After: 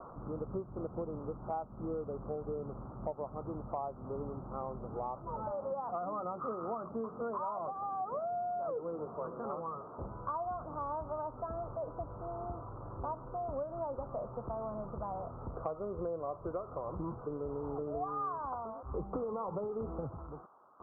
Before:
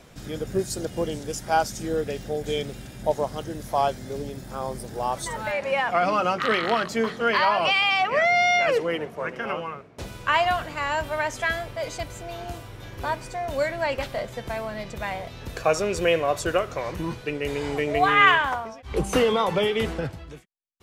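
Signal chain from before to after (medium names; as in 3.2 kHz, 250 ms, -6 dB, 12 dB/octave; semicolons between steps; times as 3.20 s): zero-crossing glitches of -13.5 dBFS; steep low-pass 1.3 kHz 96 dB/octave; compression, threshold -29 dBFS, peak gain reduction 13 dB; trim -6 dB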